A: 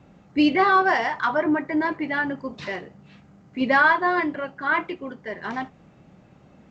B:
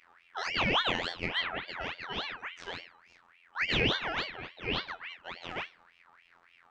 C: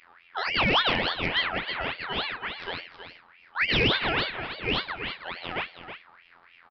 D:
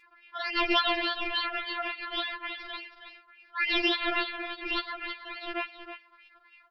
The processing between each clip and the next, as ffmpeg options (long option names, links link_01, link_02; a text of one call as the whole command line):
ffmpeg -i in.wav -af "afftfilt=real='hypot(re,im)*cos(PI*b)':imag='0':win_size=2048:overlap=0.75,bandreject=frequency=104.6:width_type=h:width=4,bandreject=frequency=209.2:width_type=h:width=4,bandreject=frequency=313.8:width_type=h:width=4,bandreject=frequency=418.4:width_type=h:width=4,bandreject=frequency=523:width_type=h:width=4,bandreject=frequency=627.6:width_type=h:width=4,bandreject=frequency=732.2:width_type=h:width=4,bandreject=frequency=836.8:width_type=h:width=4,bandreject=frequency=941.4:width_type=h:width=4,bandreject=frequency=1046:width_type=h:width=4,bandreject=frequency=1150.6:width_type=h:width=4,bandreject=frequency=1255.2:width_type=h:width=4,bandreject=frequency=1359.8:width_type=h:width=4,bandreject=frequency=1464.4:width_type=h:width=4,bandreject=frequency=1569:width_type=h:width=4,bandreject=frequency=1673.6:width_type=h:width=4,bandreject=frequency=1778.2:width_type=h:width=4,bandreject=frequency=1882.8:width_type=h:width=4,bandreject=frequency=1987.4:width_type=h:width=4,bandreject=frequency=2092:width_type=h:width=4,bandreject=frequency=2196.6:width_type=h:width=4,bandreject=frequency=2301.2:width_type=h:width=4,bandreject=frequency=2405.8:width_type=h:width=4,bandreject=frequency=2510.4:width_type=h:width=4,bandreject=frequency=2615:width_type=h:width=4,bandreject=frequency=2719.6:width_type=h:width=4,bandreject=frequency=2824.2:width_type=h:width=4,bandreject=frequency=2928.8:width_type=h:width=4,bandreject=frequency=3033.4:width_type=h:width=4,bandreject=frequency=3138:width_type=h:width=4,bandreject=frequency=3242.6:width_type=h:width=4,bandreject=frequency=3347.2:width_type=h:width=4,bandreject=frequency=3451.8:width_type=h:width=4,bandreject=frequency=3556.4:width_type=h:width=4,aeval=exprs='val(0)*sin(2*PI*1800*n/s+1800*0.45/3.5*sin(2*PI*3.5*n/s))':channel_layout=same,volume=-4dB" out.wav
ffmpeg -i in.wav -af "aecho=1:1:321:0.316,aresample=11025,asoftclip=type=hard:threshold=-20.5dB,aresample=44100,volume=6dB" out.wav
ffmpeg -i in.wav -af "afftfilt=real='re*4*eq(mod(b,16),0)':imag='im*4*eq(mod(b,16),0)':win_size=2048:overlap=0.75" out.wav